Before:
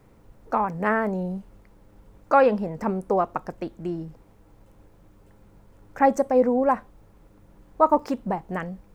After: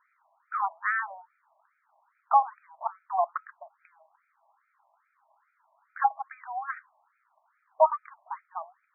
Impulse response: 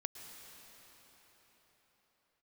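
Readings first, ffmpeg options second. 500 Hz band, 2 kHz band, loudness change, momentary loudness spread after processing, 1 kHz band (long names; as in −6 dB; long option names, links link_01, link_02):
−11.5 dB, −2.0 dB, −5.5 dB, 17 LU, −3.0 dB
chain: -af "afftfilt=real='re*between(b*sr/1024,810*pow(1800/810,0.5+0.5*sin(2*PI*2.4*pts/sr))/1.41,810*pow(1800/810,0.5+0.5*sin(2*PI*2.4*pts/sr))*1.41)':imag='im*between(b*sr/1024,810*pow(1800/810,0.5+0.5*sin(2*PI*2.4*pts/sr))/1.41,810*pow(1800/810,0.5+0.5*sin(2*PI*2.4*pts/sr))*1.41)':win_size=1024:overlap=0.75"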